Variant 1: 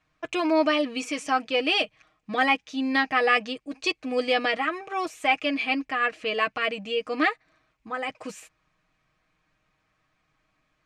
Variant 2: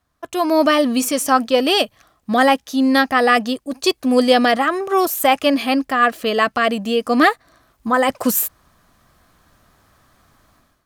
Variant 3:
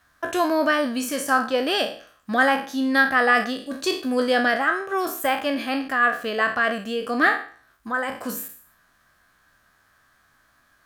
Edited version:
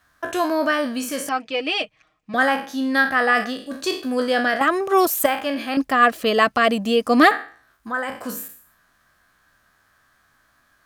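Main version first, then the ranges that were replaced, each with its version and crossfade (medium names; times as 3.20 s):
3
1.29–2.34 s: from 1
4.61–5.26 s: from 2
5.77–7.31 s: from 2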